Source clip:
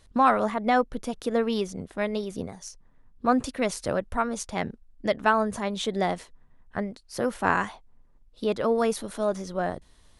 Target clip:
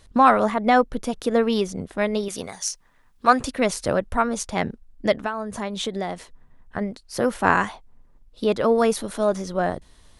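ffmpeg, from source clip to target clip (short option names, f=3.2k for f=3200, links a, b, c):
-filter_complex "[0:a]asettb=1/sr,asplit=3[a][b][c];[a]atrim=end=2.284[d];[b]atrim=start=2.28:end=3.4,asetpts=PTS-STARTPTS,afade=t=in:d=0.004:c=qsin,afade=t=out:st=1.116:d=0.004:c=qsin,tiltshelf=f=670:g=-9.5[e];[c]atrim=start=3.396[f];[d][e]acrossfade=d=0.004:c1=hsin:c2=qsin[g];[g][f]acrossfade=d=0.004:c1=qsin:c2=hsin,asplit=3[h][i][j];[h]afade=t=out:st=5.2:d=0.02[k];[i]acompressor=threshold=-29dB:ratio=8,afade=t=in:st=5.2:d=0.02,afade=t=out:st=6.8:d=0.02[l];[j]afade=t=in:st=6.8:d=0.02[m];[k][l][m]amix=inputs=3:normalize=0,volume=5dB"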